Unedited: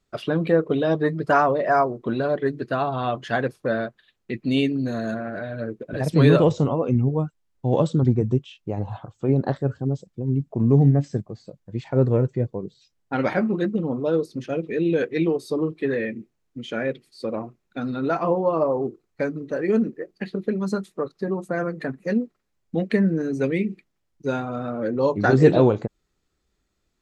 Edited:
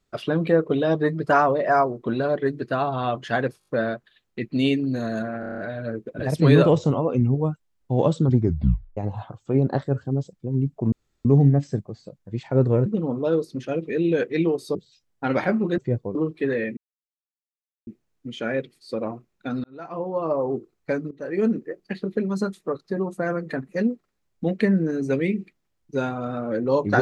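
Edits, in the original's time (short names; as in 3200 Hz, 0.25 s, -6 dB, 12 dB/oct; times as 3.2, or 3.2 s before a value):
3.59 stutter 0.02 s, 5 plays
5.32 stutter 0.03 s, 7 plays
8.13 tape stop 0.58 s
10.66 insert room tone 0.33 s
12.27–12.64 swap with 13.67–15.56
16.18 insert silence 1.10 s
17.95–18.87 fade in
19.42–19.94 fade in equal-power, from -15 dB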